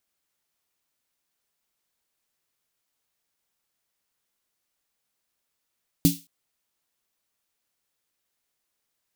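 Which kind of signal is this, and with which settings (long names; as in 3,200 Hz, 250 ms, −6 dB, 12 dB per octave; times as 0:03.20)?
synth snare length 0.22 s, tones 170 Hz, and 280 Hz, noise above 3,000 Hz, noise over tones −8 dB, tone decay 0.21 s, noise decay 0.31 s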